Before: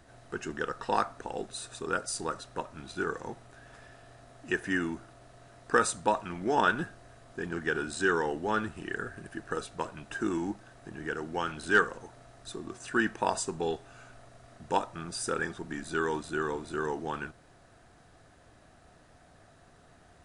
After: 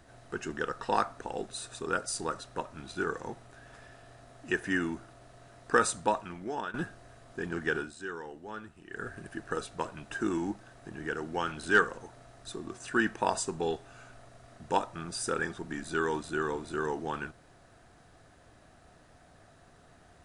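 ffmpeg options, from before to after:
ffmpeg -i in.wav -filter_complex "[0:a]asplit=4[link_01][link_02][link_03][link_04];[link_01]atrim=end=6.74,asetpts=PTS-STARTPTS,afade=type=out:start_time=5.99:duration=0.75:silence=0.141254[link_05];[link_02]atrim=start=6.74:end=7.93,asetpts=PTS-STARTPTS,afade=type=in:duration=0.004:curve=hsin:silence=0.141254,afade=type=out:start_time=1.01:duration=0.18:silence=0.237137[link_06];[link_03]atrim=start=7.93:end=8.89,asetpts=PTS-STARTPTS,volume=-12.5dB[link_07];[link_04]atrim=start=8.89,asetpts=PTS-STARTPTS,afade=type=in:duration=0.18:silence=0.237137[link_08];[link_05][link_06][link_07][link_08]concat=n=4:v=0:a=1" out.wav

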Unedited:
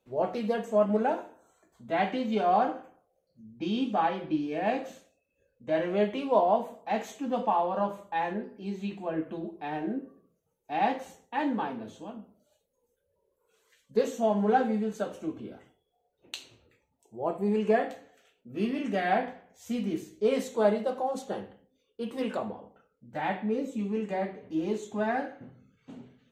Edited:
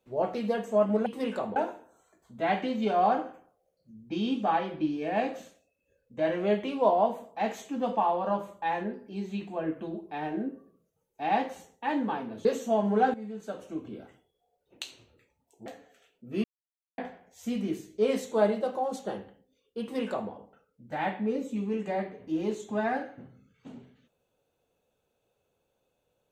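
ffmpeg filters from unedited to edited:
ffmpeg -i in.wav -filter_complex "[0:a]asplit=8[link_01][link_02][link_03][link_04][link_05][link_06][link_07][link_08];[link_01]atrim=end=1.062[link_09];[link_02]atrim=start=22.038:end=22.542[link_10];[link_03]atrim=start=1.058:end=11.952[link_11];[link_04]atrim=start=13.968:end=14.66,asetpts=PTS-STARTPTS,afade=type=out:start_time=0.688:duration=0.004:curve=hsin:silence=0.199526[link_12];[link_05]atrim=start=14.66:end=17.182,asetpts=PTS-STARTPTS,afade=type=in:duration=0.81:silence=0.199526[link_13];[link_06]atrim=start=17.888:end=18.67,asetpts=PTS-STARTPTS,afade=type=out:start_time=0.778:duration=0.004:curve=hsin[link_14];[link_07]atrim=start=18.67:end=19.21,asetpts=PTS-STARTPTS,volume=0[link_15];[link_08]atrim=start=19.21,asetpts=PTS-STARTPTS,afade=type=in:duration=0.004:curve=hsin[link_16];[link_09][link_10]acrossfade=duration=0.004:curve1=hsin:curve2=hsin[link_17];[link_17][link_11]acrossfade=duration=0.004:curve1=hsin:curve2=hsin[link_18];[link_12][link_13]concat=n=2:v=0:a=1[link_19];[link_18][link_19]acrossfade=duration=0.004:curve1=hsin:curve2=hsin[link_20];[link_14][link_15][link_16]concat=n=3:v=0:a=1[link_21];[link_20][link_21]acrossfade=duration=0.004:curve1=hsin:curve2=hsin" out.wav

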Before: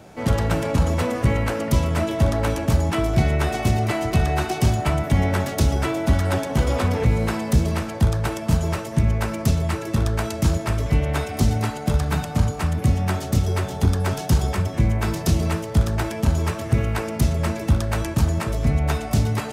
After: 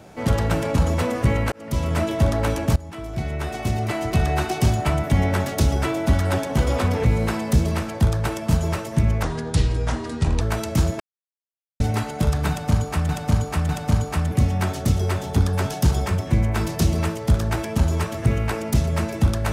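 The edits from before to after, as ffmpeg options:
ffmpeg -i in.wav -filter_complex "[0:a]asplit=9[link_01][link_02][link_03][link_04][link_05][link_06][link_07][link_08][link_09];[link_01]atrim=end=1.52,asetpts=PTS-STARTPTS,afade=type=out:start_time=1.516:duration=0.004:curve=hsin[link_10];[link_02]atrim=start=1.52:end=2.76,asetpts=PTS-STARTPTS,afade=type=in:duration=0.41,afade=type=out:start_time=1.236:duration=0.004:curve=hsin:silence=0.11885[link_11];[link_03]atrim=start=2.76:end=9.234,asetpts=PTS-STARTPTS,afade=type=in:duration=1.55:silence=0.11885[link_12];[link_04]atrim=start=9.23:end=10.08,asetpts=PTS-STARTPTS,asetrate=31752,aresample=44100,atrim=end_sample=52062,asetpts=PTS-STARTPTS[link_13];[link_05]atrim=start=10.076:end=10.67,asetpts=PTS-STARTPTS,afade=type=out:start_time=0.59:duration=0.004:curve=hsin[link_14];[link_06]atrim=start=10.67:end=11.47,asetpts=PTS-STARTPTS,volume=0[link_15];[link_07]atrim=start=11.47:end=12.762,asetpts=PTS-STARTPTS,afade=type=in:duration=0.004:curve=hsin[link_16];[link_08]atrim=start=12.158:end=12.762[link_17];[link_09]atrim=start=12.158[link_18];[link_10][link_11][link_12]concat=n=3:v=0:a=1[link_19];[link_19][link_13]acrossfade=duration=0.004:curve1=hsin:curve2=hsin[link_20];[link_14][link_15][link_16]concat=n=3:v=0:a=1[link_21];[link_20][link_21]acrossfade=duration=0.004:curve1=hsin:curve2=hsin[link_22];[link_22][link_17]acrossfade=duration=0.004:curve1=hsin:curve2=hsin[link_23];[link_23][link_18]acrossfade=duration=0.004:curve1=hsin:curve2=hsin" out.wav

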